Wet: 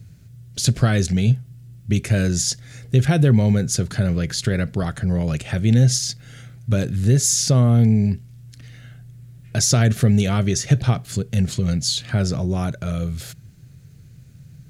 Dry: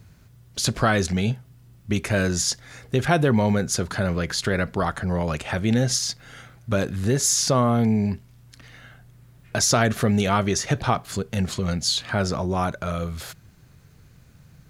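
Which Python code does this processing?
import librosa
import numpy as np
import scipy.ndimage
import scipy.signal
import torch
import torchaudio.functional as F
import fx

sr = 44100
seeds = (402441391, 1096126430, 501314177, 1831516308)

y = fx.graphic_eq(x, sr, hz=(125, 1000, 8000), db=(10, -11, 3))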